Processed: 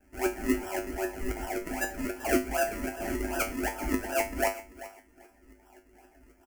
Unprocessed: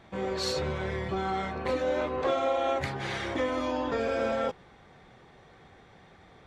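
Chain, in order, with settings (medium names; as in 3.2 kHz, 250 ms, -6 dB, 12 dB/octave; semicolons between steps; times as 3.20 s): peaking EQ 360 Hz +6.5 dB 0.96 oct; comb 5.6 ms, depth 53%; gain riding 0.5 s; LFO high-pass saw down 3.8 Hz 420–3600 Hz; decimation with a swept rate 39×, swing 100% 2.6 Hz; static phaser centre 750 Hz, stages 8; feedback comb 52 Hz, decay 0.28 s, harmonics odd, mix 90%; feedback delay 388 ms, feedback 18%, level -16 dB; trim +7.5 dB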